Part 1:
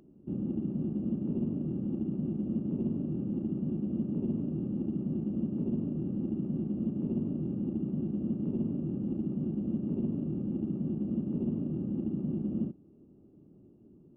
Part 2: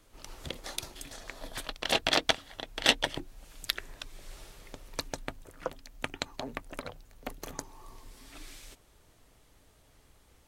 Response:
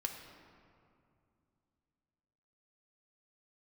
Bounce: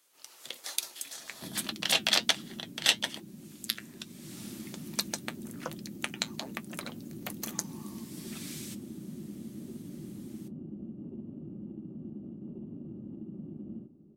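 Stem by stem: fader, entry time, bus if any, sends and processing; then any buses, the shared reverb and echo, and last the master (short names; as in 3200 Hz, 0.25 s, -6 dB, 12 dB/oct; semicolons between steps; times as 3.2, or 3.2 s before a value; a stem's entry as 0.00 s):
-11.5 dB, 1.15 s, send -7 dB, compressor 6:1, threshold -35 dBFS, peak gain reduction 8.5 dB
-5.5 dB, 0.00 s, no send, HPF 200 Hz 12 dB/oct; tilt +3.5 dB/oct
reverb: on, RT60 2.5 s, pre-delay 3 ms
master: AGC gain up to 8.5 dB; flange 1.2 Hz, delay 4.9 ms, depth 4.4 ms, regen -63%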